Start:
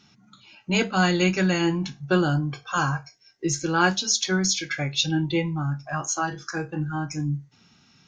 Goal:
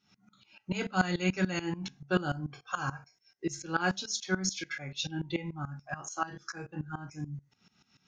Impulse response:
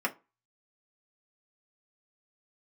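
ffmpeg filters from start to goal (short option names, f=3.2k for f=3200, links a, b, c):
-filter_complex "[0:a]asplit=2[a][b];[1:a]atrim=start_sample=2205[c];[b][c]afir=irnorm=-1:irlink=0,volume=-18dB[d];[a][d]amix=inputs=2:normalize=0,aeval=exprs='val(0)*pow(10,-18*if(lt(mod(-6.9*n/s,1),2*abs(-6.9)/1000),1-mod(-6.9*n/s,1)/(2*abs(-6.9)/1000),(mod(-6.9*n/s,1)-2*abs(-6.9)/1000)/(1-2*abs(-6.9)/1000))/20)':c=same,volume=-4dB"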